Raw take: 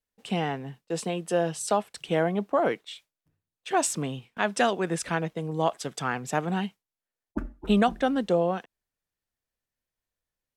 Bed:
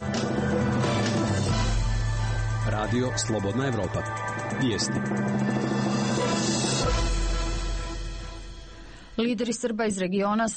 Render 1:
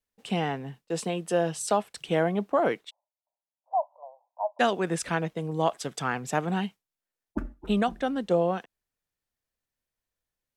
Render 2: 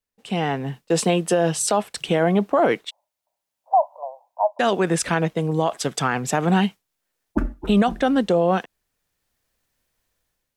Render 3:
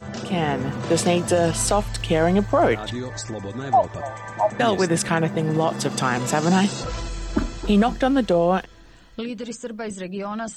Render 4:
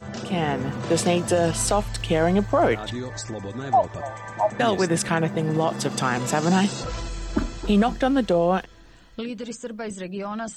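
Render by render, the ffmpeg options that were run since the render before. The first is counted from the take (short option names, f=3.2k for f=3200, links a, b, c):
-filter_complex "[0:a]asplit=3[a][b][c];[a]afade=t=out:st=2.89:d=0.02[d];[b]asuperpass=centerf=750:order=12:qfactor=1.7,afade=t=in:st=2.89:d=0.02,afade=t=out:st=4.59:d=0.02[e];[c]afade=t=in:st=4.59:d=0.02[f];[d][e][f]amix=inputs=3:normalize=0,asplit=3[g][h][i];[g]atrim=end=7.542[j];[h]atrim=start=7.538:end=8.312,asetpts=PTS-STARTPTS,volume=-3.5dB[k];[i]atrim=start=8.308[l];[j][k]acrossfade=d=0.004:c1=hsin:c2=hsin[m];[m][l]acrossfade=d=0.004:c1=hsin:c2=hsin"
-af "dynaudnorm=f=240:g=5:m=14.5dB,alimiter=limit=-9.5dB:level=0:latency=1:release=44"
-filter_complex "[1:a]volume=-4.5dB[a];[0:a][a]amix=inputs=2:normalize=0"
-af "volume=-1.5dB"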